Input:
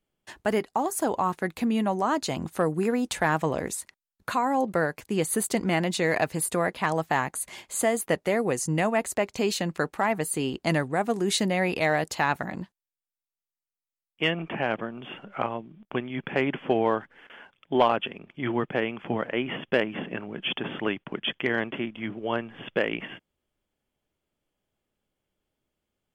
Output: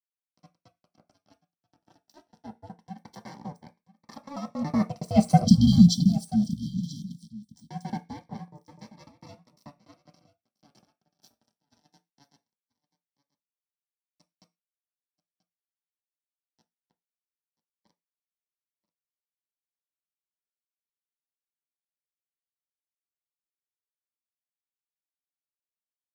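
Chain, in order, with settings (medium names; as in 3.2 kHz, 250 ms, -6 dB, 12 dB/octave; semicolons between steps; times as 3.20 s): slices played last to first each 95 ms, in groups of 2; Doppler pass-by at 5.64 s, 8 m/s, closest 2 m; low-pass 7.4 kHz 24 dB/octave; peaking EQ 700 Hz -8 dB 0.75 oct; comb 2.1 ms, depth 99%; crossover distortion -45 dBFS; ring modulator 290 Hz; spectral selection erased 5.44–7.47 s, 280–3100 Hz; delay 984 ms -18.5 dB; reverberation RT60 0.20 s, pre-delay 3 ms, DRR 4.5 dB; Shepard-style phaser rising 0.21 Hz; trim +2 dB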